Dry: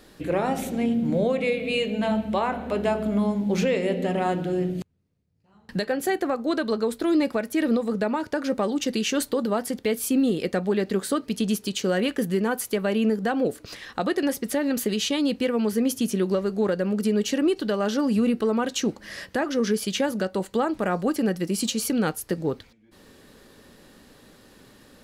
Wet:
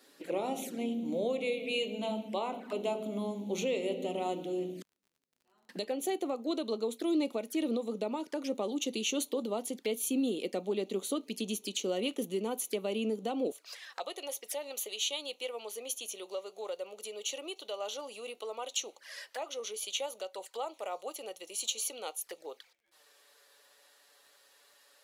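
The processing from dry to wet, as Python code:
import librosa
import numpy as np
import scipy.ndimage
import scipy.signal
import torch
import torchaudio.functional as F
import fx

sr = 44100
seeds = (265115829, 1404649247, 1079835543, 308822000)

y = fx.high_shelf(x, sr, hz=2600.0, db=6.0)
y = fx.env_flanger(y, sr, rest_ms=8.7, full_db=-23.0)
y = fx.highpass(y, sr, hz=fx.steps((0.0, 240.0), (13.52, 550.0)), slope=24)
y = fx.dmg_crackle(y, sr, seeds[0], per_s=40.0, level_db=-50.0)
y = F.gain(torch.from_numpy(y), -7.5).numpy()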